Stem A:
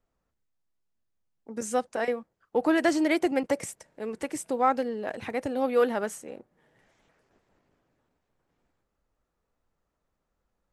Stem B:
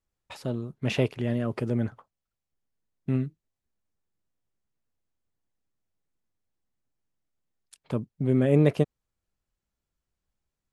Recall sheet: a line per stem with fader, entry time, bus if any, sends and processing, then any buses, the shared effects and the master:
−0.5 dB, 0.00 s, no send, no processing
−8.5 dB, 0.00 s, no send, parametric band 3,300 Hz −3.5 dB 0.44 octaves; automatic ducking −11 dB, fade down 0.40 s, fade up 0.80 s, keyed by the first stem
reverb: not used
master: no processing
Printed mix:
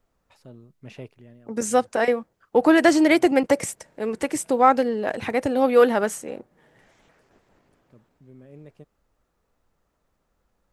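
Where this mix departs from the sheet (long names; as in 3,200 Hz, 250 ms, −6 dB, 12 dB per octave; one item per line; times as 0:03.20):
stem A −0.5 dB → +7.5 dB
stem B −8.5 dB → −14.5 dB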